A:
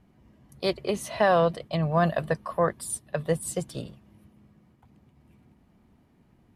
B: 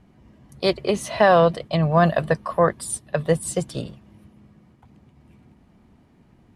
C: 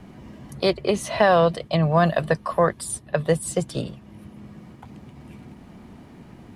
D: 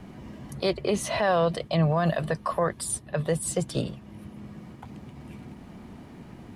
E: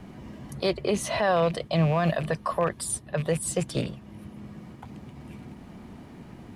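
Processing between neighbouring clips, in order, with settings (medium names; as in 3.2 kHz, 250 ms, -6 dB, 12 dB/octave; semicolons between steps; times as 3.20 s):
low-pass 10 kHz 12 dB/octave; trim +6 dB
three bands compressed up and down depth 40%
peak limiter -15 dBFS, peak gain reduction 10 dB
rattle on loud lows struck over -28 dBFS, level -30 dBFS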